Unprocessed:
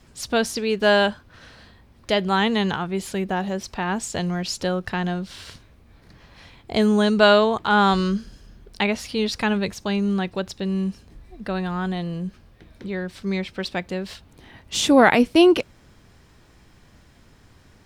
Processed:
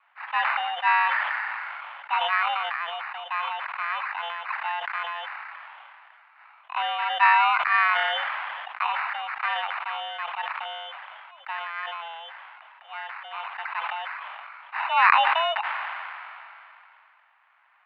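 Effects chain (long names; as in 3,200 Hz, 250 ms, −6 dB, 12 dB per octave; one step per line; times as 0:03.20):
decimation without filtering 15×
single-sideband voice off tune +330 Hz 540–2,700 Hz
level that may fall only so fast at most 21 dB per second
level −2 dB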